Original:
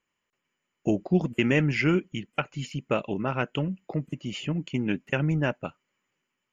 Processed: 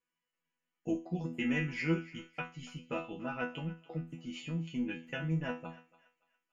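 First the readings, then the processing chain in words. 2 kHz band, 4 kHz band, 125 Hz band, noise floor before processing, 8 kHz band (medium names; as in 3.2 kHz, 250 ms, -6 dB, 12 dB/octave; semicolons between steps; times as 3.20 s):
-8.5 dB, -10.0 dB, -10.0 dB, -82 dBFS, no reading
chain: chord resonator E3 fifth, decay 0.32 s; thinning echo 285 ms, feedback 37%, high-pass 860 Hz, level -17 dB; trim +5 dB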